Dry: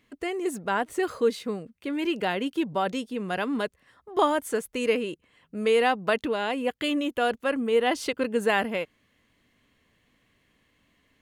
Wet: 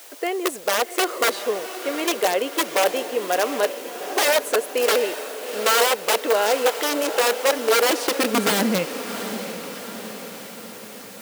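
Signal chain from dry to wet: in parallel at -10 dB: word length cut 6-bit, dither triangular; on the sum: integer overflow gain 17 dB; high-pass sweep 510 Hz -> 130 Hz, 7.66–9.12 s; echo that smears into a reverb 742 ms, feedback 57%, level -10.5 dB; trim +2 dB

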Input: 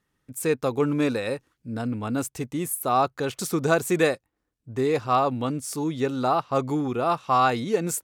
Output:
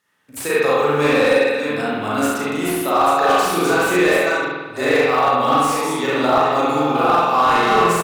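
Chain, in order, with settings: chunks repeated in reverse 445 ms, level -8 dB; high-pass 1 kHz 6 dB/octave; in parallel at +2 dB: compressor with a negative ratio -29 dBFS, ratio -0.5; on the sum: short-mantissa float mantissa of 4-bit; on a send: early reflections 36 ms -3.5 dB, 69 ms -6.5 dB; on the sum: spring tank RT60 1.2 s, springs 47 ms, chirp 40 ms, DRR -6.5 dB; slew-rate limiter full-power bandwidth 370 Hz; trim -1 dB

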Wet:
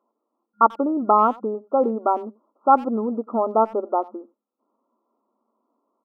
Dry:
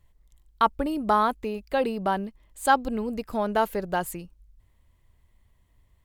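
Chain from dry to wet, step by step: FFT band-pass 210–1400 Hz; speakerphone echo 90 ms, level -22 dB; trim +5.5 dB

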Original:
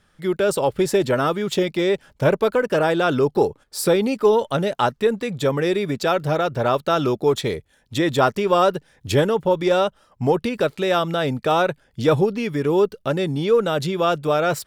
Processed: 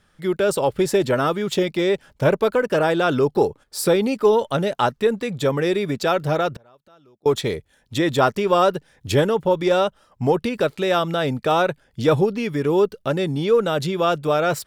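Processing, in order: 6.52–7.26 s: inverted gate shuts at -26 dBFS, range -33 dB

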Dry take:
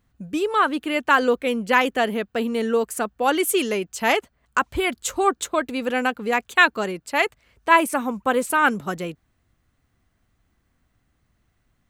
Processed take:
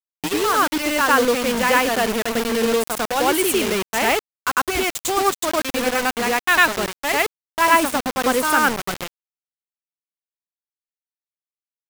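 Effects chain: reverse echo 101 ms -3 dB; bit crusher 4-bit

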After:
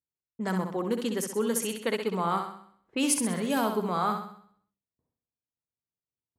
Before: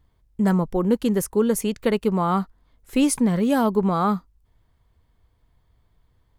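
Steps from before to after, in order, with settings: hum notches 50/100/150/200/250 Hz; gate with hold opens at -51 dBFS; level-controlled noise filter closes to 540 Hz, open at -16.5 dBFS; high-pass 160 Hz 12 dB/octave; tilt shelf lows -4.5 dB, about 1.1 kHz; on a send: flutter echo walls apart 11.1 m, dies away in 0.6 s; on the sum: trim -5 dB

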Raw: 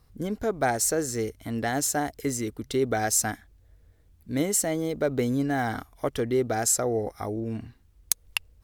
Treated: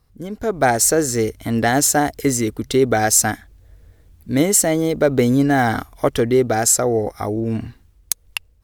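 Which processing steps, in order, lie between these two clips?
level rider gain up to 13.5 dB; trim -1 dB

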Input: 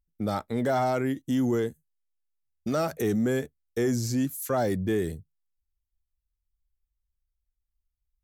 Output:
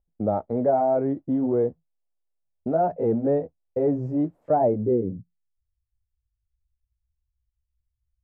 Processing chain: pitch bend over the whole clip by +4 st starting unshifted; modulation noise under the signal 23 dB; low-pass sweep 660 Hz -> 100 Hz, 4.65–5.59 s; trim +1.5 dB

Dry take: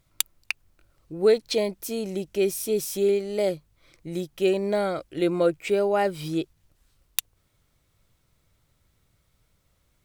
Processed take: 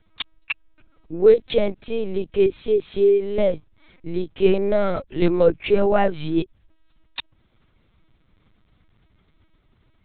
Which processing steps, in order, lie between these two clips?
bass shelf 190 Hz +3.5 dB; LPC vocoder at 8 kHz pitch kept; trim +5 dB

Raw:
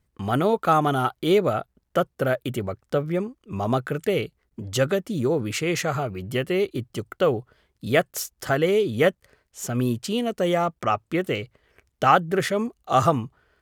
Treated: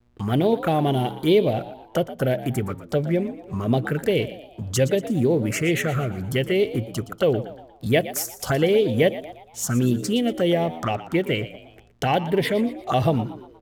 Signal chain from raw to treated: band-stop 2.5 kHz, Q 26; in parallel at +2.5 dB: compression, threshold -28 dBFS, peak gain reduction 15.5 dB; on the sum: touch-sensitive phaser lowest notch 170 Hz, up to 1.3 kHz, full sweep at -15.5 dBFS; mains buzz 120 Hz, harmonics 35, -54 dBFS -7 dB/octave; vibrato 0.82 Hz 36 cents; hysteresis with a dead band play -46 dBFS; frequency-shifting echo 118 ms, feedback 45%, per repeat +74 Hz, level -14.5 dB; on a send at -22.5 dB: reverberation RT60 0.55 s, pre-delay 3 ms

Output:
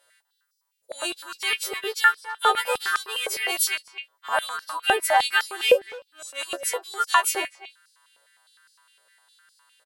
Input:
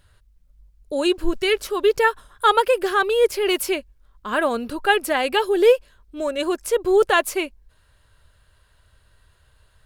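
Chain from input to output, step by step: partials quantised in pitch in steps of 2 st; speakerphone echo 250 ms, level -13 dB; step-sequenced high-pass 9.8 Hz 550–5100 Hz; trim -6.5 dB

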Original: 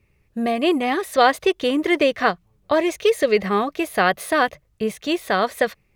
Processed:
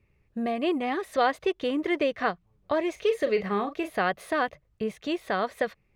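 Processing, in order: low-pass 3.1 kHz 6 dB/octave; in parallel at -2.5 dB: compression, threshold -27 dBFS, peak gain reduction 16 dB; 2.92–3.90 s: on the sum: doubling 40 ms -10 dB; trim -9 dB

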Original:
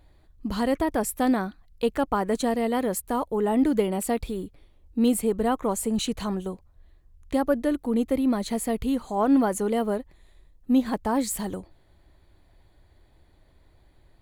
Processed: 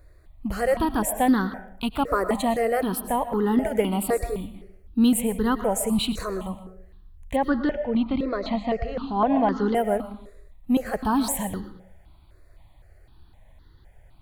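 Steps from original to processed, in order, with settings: 7.36–9.75 s: steep low-pass 5.3 kHz 48 dB/octave; reverberation RT60 0.65 s, pre-delay 75 ms, DRR 10 dB; stepped phaser 3.9 Hz 840–2400 Hz; trim +5.5 dB

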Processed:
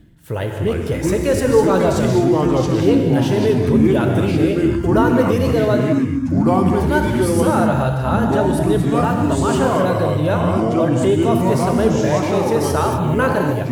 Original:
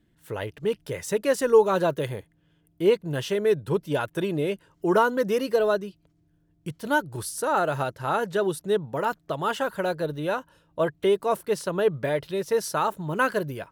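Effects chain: ever faster or slower copies 218 ms, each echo -4 st, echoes 3; tone controls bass +9 dB, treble 0 dB; in parallel at +3 dB: peak limiter -17 dBFS, peak gain reduction 12.5 dB; on the sum: peaking EQ 620 Hz +2.5 dB 0.77 oct; gated-style reverb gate 280 ms flat, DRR 3 dB; reverse; upward compressor, threshold -21 dBFS; reverse; trim -3 dB

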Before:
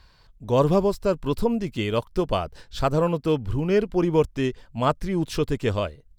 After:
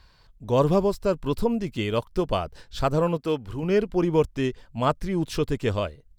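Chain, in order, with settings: 3.17–3.63 s: bass shelf 190 Hz -10.5 dB; trim -1 dB

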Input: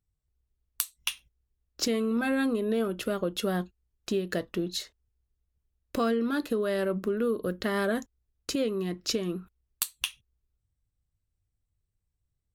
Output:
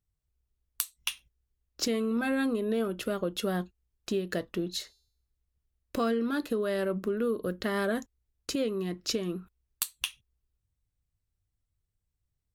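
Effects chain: 4.74–6.26 s: de-hum 398 Hz, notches 33; trim -1.5 dB

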